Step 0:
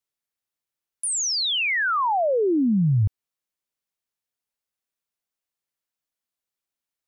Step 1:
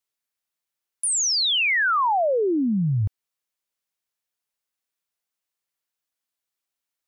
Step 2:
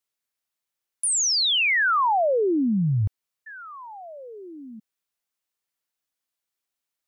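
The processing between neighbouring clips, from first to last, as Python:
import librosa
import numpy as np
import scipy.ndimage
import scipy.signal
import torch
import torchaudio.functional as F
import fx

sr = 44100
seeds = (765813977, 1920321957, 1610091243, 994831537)

y1 = fx.low_shelf(x, sr, hz=480.0, db=-5.5)
y1 = y1 * librosa.db_to_amplitude(2.5)
y2 = fx.spec_paint(y1, sr, seeds[0], shape='fall', start_s=3.46, length_s=1.34, low_hz=210.0, high_hz=1800.0, level_db=-40.0)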